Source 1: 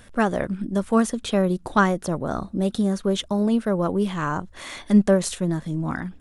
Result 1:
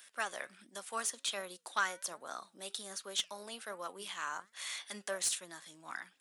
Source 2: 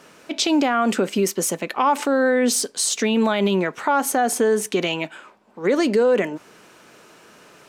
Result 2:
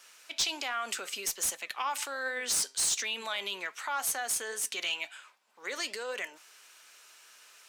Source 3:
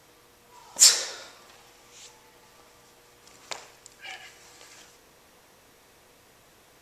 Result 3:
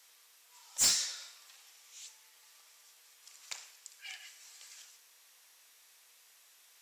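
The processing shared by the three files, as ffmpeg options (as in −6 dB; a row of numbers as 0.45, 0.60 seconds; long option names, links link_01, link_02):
-filter_complex "[0:a]acrossover=split=150|1500[link_01][link_02][link_03];[link_01]acompressor=mode=upward:threshold=-52dB:ratio=2.5[link_04];[link_04][link_02][link_03]amix=inputs=3:normalize=0,aderivative,asplit=2[link_05][link_06];[link_06]highpass=frequency=720:poles=1,volume=23dB,asoftclip=type=tanh:threshold=-2dB[link_07];[link_05][link_07]amix=inputs=2:normalize=0,lowpass=frequency=4000:poles=1,volume=-6dB,flanger=delay=3.7:depth=3.9:regen=87:speed=1.3:shape=sinusoidal,volume=-7.5dB"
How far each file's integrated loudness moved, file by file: −16.0, −11.5, −14.0 LU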